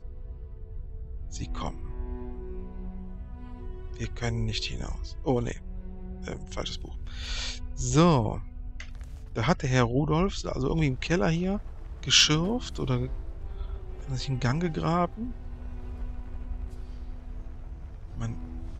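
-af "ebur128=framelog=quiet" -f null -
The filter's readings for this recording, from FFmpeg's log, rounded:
Integrated loudness:
  I:         -28.6 LUFS
  Threshold: -40.3 LUFS
Loudness range:
  LRA:        14.1 LU
  Threshold: -49.7 LUFS
  LRA low:   -39.8 LUFS
  LRA high:  -25.6 LUFS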